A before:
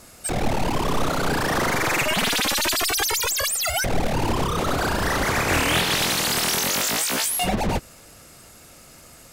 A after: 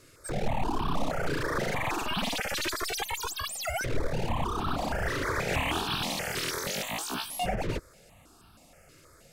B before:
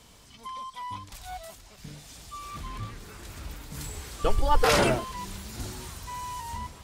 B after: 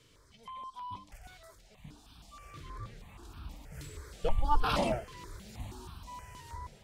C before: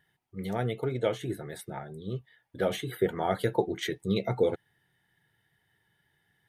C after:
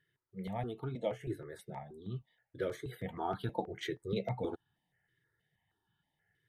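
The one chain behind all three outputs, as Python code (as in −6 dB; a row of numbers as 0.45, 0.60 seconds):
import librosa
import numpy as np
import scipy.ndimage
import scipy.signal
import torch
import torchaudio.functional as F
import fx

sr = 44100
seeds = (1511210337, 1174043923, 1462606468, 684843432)

y = fx.high_shelf(x, sr, hz=5400.0, db=-11.5)
y = fx.phaser_held(y, sr, hz=6.3, low_hz=210.0, high_hz=2000.0)
y = y * 10.0 ** (-4.0 / 20.0)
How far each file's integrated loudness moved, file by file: −9.5, −7.5, −8.5 LU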